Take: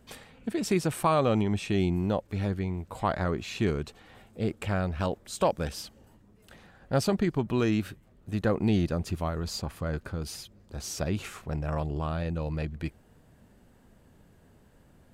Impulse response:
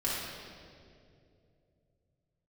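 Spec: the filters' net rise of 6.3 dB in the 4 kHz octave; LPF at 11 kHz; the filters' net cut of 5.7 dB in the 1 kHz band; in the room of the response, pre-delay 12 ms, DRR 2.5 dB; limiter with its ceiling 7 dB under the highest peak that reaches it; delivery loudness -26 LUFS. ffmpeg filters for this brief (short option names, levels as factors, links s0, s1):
-filter_complex "[0:a]lowpass=11000,equalizer=f=1000:t=o:g=-8,equalizer=f=4000:t=o:g=8.5,alimiter=limit=0.1:level=0:latency=1,asplit=2[s0][s1];[1:a]atrim=start_sample=2205,adelay=12[s2];[s1][s2]afir=irnorm=-1:irlink=0,volume=0.316[s3];[s0][s3]amix=inputs=2:normalize=0,volume=1.58"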